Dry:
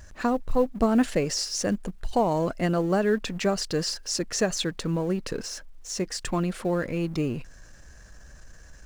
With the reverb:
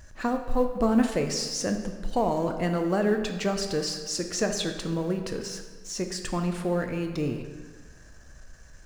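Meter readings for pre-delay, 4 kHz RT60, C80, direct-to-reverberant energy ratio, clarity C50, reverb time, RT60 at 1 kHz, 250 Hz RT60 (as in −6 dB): 7 ms, 1.1 s, 8.5 dB, 5.0 dB, 7.0 dB, 1.5 s, 1.5 s, 1.6 s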